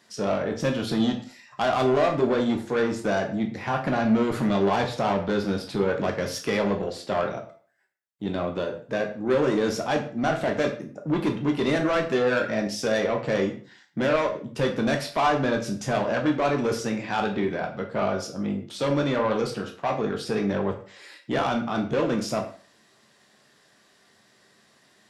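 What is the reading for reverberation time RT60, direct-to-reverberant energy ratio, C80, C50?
0.45 s, 2.0 dB, 13.5 dB, 9.5 dB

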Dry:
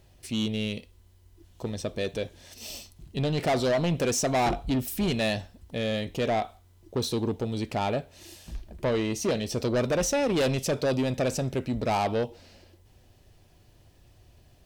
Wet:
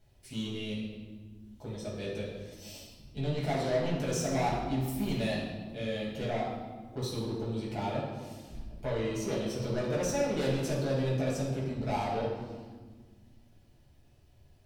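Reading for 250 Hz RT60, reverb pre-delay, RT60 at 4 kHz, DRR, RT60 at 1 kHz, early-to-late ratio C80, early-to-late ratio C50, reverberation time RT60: 2.6 s, 6 ms, 1.0 s, −7.0 dB, 1.5 s, 4.0 dB, 1.5 dB, 1.5 s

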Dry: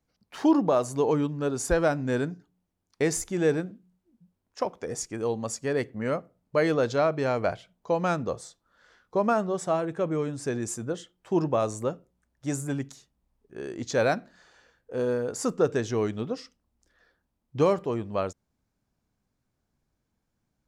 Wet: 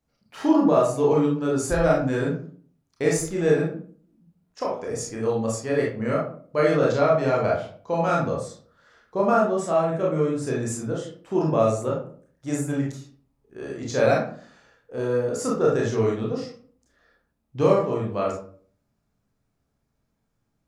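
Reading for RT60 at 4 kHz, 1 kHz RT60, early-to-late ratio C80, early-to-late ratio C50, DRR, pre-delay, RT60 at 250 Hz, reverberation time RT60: 0.30 s, 0.45 s, 9.0 dB, 3.5 dB, −4.0 dB, 25 ms, 0.65 s, 0.50 s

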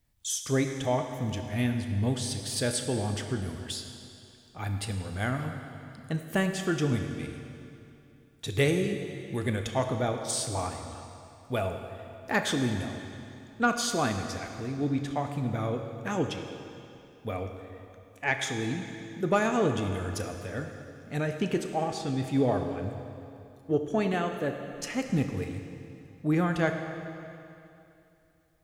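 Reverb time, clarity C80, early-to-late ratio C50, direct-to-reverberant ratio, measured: 2.7 s, 7.0 dB, 6.0 dB, 5.0 dB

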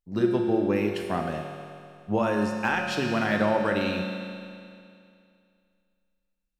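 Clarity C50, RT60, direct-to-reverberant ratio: 3.0 dB, 2.4 s, 1.5 dB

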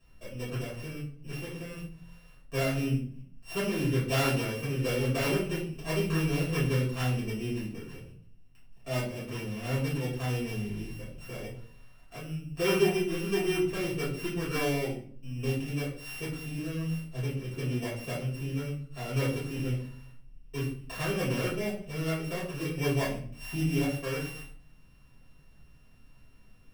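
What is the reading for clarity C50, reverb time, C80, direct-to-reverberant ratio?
5.5 dB, 0.50 s, 9.5 dB, −10.0 dB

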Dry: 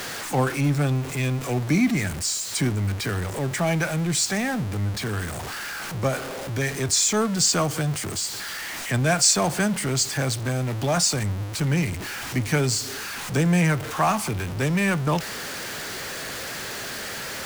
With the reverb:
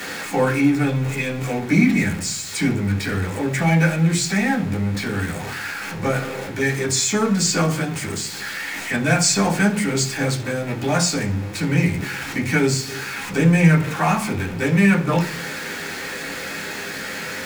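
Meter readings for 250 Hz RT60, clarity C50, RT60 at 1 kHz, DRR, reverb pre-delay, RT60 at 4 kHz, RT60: 0.75 s, 12.0 dB, 0.40 s, −4.5 dB, 3 ms, 0.55 s, 0.50 s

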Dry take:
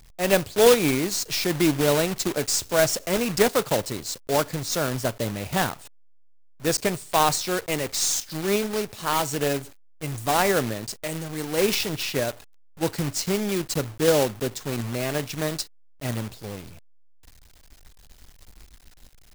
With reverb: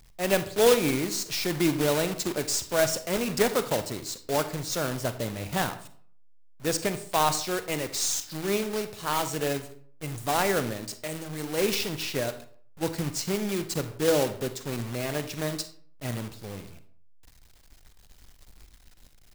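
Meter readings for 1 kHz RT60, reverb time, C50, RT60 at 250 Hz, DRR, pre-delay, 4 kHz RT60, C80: 0.55 s, 0.55 s, 12.5 dB, 0.55 s, 10.5 dB, 39 ms, 0.35 s, 16.0 dB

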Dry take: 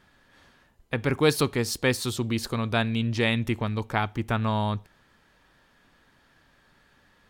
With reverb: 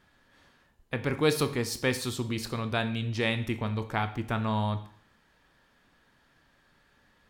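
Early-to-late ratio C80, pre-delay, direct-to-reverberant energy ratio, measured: 16.5 dB, 22 ms, 9.5 dB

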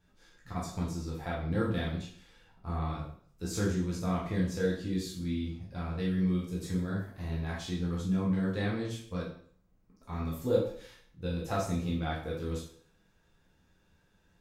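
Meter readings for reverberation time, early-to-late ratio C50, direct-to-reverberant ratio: 0.55 s, 5.0 dB, −5.5 dB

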